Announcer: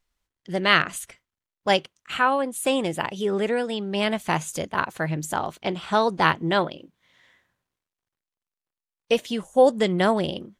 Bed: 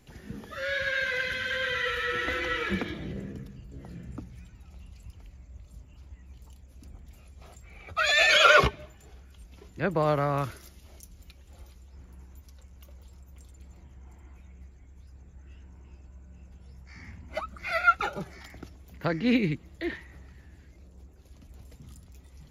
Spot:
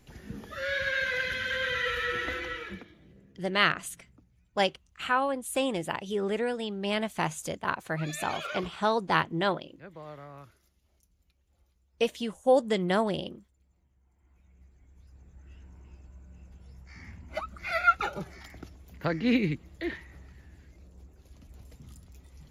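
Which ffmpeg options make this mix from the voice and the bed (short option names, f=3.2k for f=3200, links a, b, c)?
-filter_complex "[0:a]adelay=2900,volume=-5.5dB[a];[1:a]volume=18dB,afade=t=out:st=2.05:d=0.83:silence=0.112202,afade=t=in:st=14.14:d=1.49:silence=0.11885[b];[a][b]amix=inputs=2:normalize=0"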